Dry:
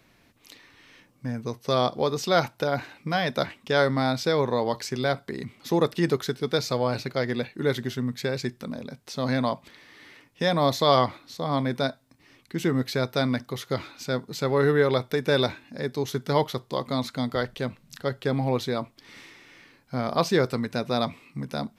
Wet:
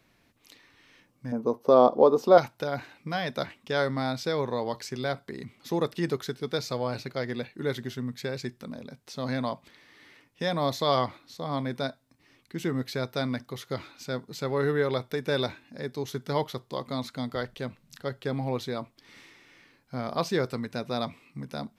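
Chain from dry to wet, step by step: 1.32–2.38 graphic EQ 125/250/500/1000/2000/4000/8000 Hz -8/+9/+10/+10/-9/-5/-8 dB; gain -5 dB

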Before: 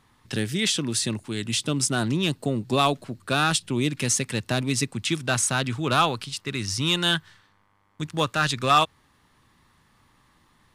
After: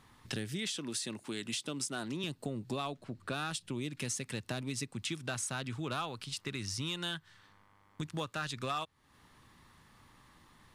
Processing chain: 0.76–2.24 Bessel high-pass 240 Hz, order 2; compressor 4:1, threshold -37 dBFS, peak gain reduction 19 dB; 2.76–3.32 LPF 8100 Hz -> 3200 Hz 6 dB/oct

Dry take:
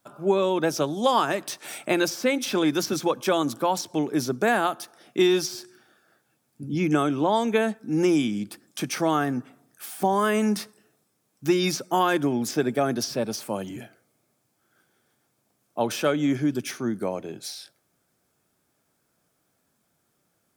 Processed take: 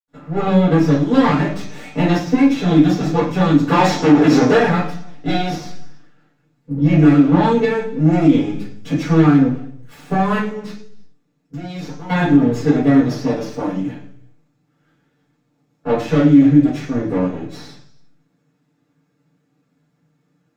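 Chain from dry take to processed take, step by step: minimum comb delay 6.8 ms; 3.59–4.49 overdrive pedal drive 26 dB, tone 5200 Hz, clips at -11 dBFS; 10.3–12.02 level quantiser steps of 19 dB; reverb, pre-delay 77 ms; maximiser +17 dB; gain -1 dB

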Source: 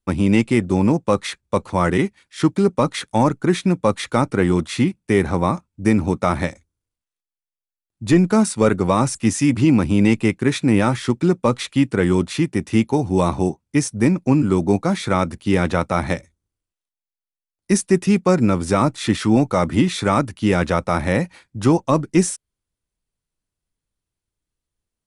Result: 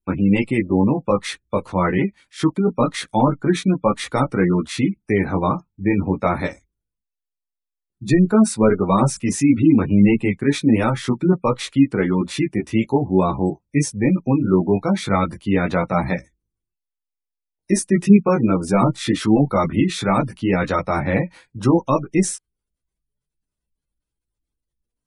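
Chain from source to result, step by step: chorus voices 6, 0.23 Hz, delay 18 ms, depth 3.7 ms; spectral gate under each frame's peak -30 dB strong; gain +2.5 dB

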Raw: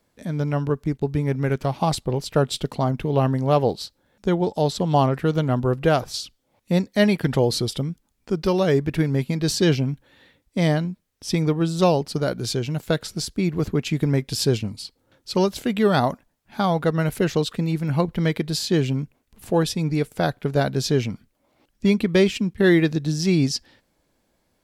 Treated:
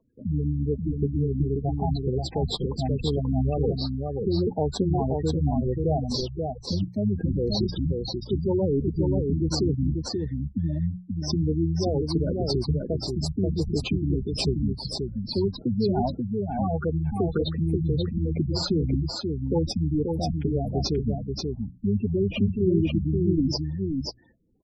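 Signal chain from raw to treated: octaver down 1 oct, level -1 dB; bell 580 Hz -6 dB 0.25 oct; in parallel at -4 dB: decimation with a swept rate 21×, swing 100% 2.3 Hz; on the sum: limiter -13 dBFS, peak gain reduction 11.5 dB; spectral gate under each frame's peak -10 dB strong; low shelf 150 Hz -7.5 dB; notches 60/120/180 Hz; echo 0.533 s -4 dB

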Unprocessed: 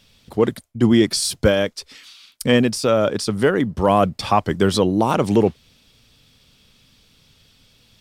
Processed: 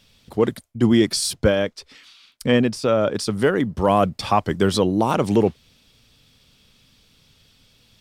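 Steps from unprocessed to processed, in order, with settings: 1.33–3.15 high shelf 5200 Hz -9.5 dB; gain -1.5 dB

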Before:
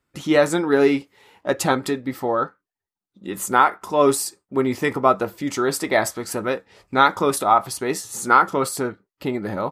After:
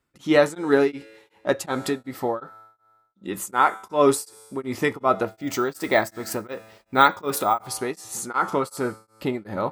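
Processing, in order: resonator 110 Hz, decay 1.6 s, mix 50%; 5.28–7.68 careless resampling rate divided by 2×, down filtered, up hold; beating tremolo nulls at 2.7 Hz; gain +5.5 dB

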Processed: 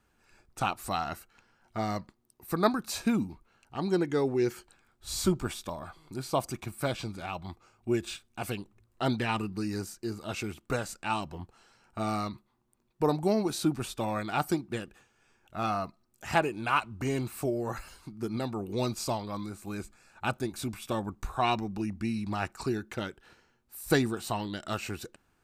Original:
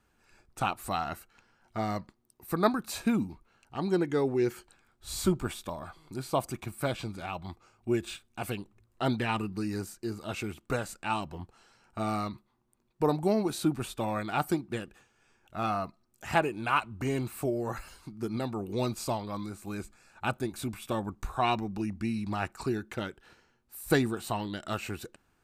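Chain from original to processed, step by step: dynamic EQ 5500 Hz, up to +5 dB, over -55 dBFS, Q 1.7

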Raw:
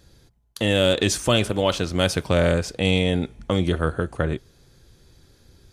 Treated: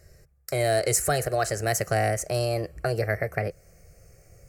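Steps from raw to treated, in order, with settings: speed glide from 115% -> 140%; in parallel at -0.5 dB: compressor, threshold -27 dBFS, peak gain reduction 12 dB; on the sum: fixed phaser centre 940 Hz, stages 6; dynamic EQ 8200 Hz, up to +7 dB, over -46 dBFS, Q 1; gain -3.5 dB

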